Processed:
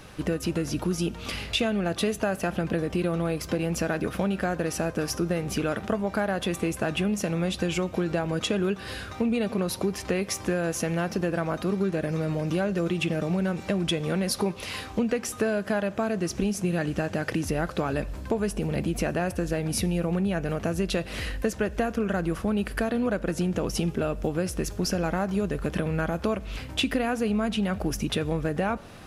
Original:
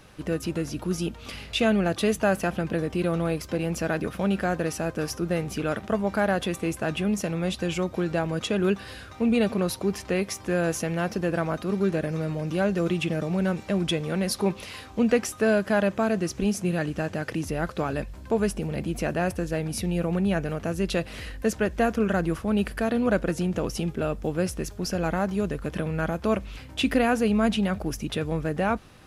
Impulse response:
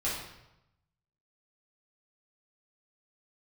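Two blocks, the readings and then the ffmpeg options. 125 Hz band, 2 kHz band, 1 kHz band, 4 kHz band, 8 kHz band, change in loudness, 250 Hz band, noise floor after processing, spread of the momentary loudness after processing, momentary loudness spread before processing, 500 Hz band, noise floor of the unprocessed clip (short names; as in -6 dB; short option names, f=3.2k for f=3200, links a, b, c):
-0.5 dB, -1.5 dB, -2.0 dB, +1.5 dB, +1.5 dB, -1.0 dB, -1.5 dB, -40 dBFS, 3 LU, 6 LU, -1.5 dB, -44 dBFS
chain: -filter_complex "[0:a]acompressor=threshold=-28dB:ratio=6,asplit=2[a][b];[1:a]atrim=start_sample=2205,asetrate=25137,aresample=44100[c];[b][c]afir=irnorm=-1:irlink=0,volume=-30dB[d];[a][d]amix=inputs=2:normalize=0,volume=5dB"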